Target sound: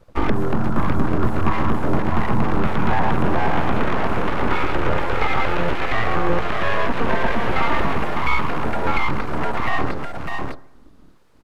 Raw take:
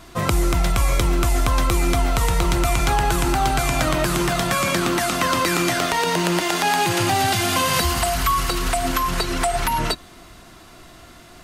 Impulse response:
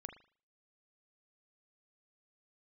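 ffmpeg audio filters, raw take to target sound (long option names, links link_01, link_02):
-filter_complex "[0:a]equalizer=frequency=125:width_type=o:width=1:gain=10,equalizer=frequency=250:width_type=o:width=1:gain=11,equalizer=frequency=500:width_type=o:width=1:gain=-8,equalizer=frequency=1000:width_type=o:width=1:gain=9,equalizer=frequency=2000:width_type=o:width=1:gain=-4,equalizer=frequency=8000:width_type=o:width=1:gain=-4,afwtdn=0.0631,asettb=1/sr,asplit=3[link_01][link_02][link_03];[link_01]atrim=end=3.854[link_04];[link_02]atrim=start=3.85:end=4.49,asetpts=PTS-STARTPTS,afade=type=in:duration=0.004:curve=qsin,afade=type=out:start_time=0.636:duration=0.004:curve=qsin,equalizer=frequency=210:width_type=o:width=0.39:gain=-13.5[link_05];[link_03]atrim=start=4.486[link_06];[link_04][link_05]acrossfade=duration=0.004:curve1=hsin:curve2=qsin[link_07];[link_07][link_06]acrossfade=duration=0.004:curve1=qsin:curve2=hsin,aecho=1:1:604:0.531,aeval=exprs='abs(val(0))':channel_layout=same,acrossover=split=3700[link_08][link_09];[link_09]acompressor=threshold=-45dB:ratio=4:attack=1:release=60[link_10];[link_08][link_10]amix=inputs=2:normalize=0,asplit=2[link_11][link_12];[1:a]atrim=start_sample=2205,asetrate=23814,aresample=44100[link_13];[link_12][link_13]afir=irnorm=-1:irlink=0,volume=-9dB[link_14];[link_11][link_14]amix=inputs=2:normalize=0,volume=-4.5dB"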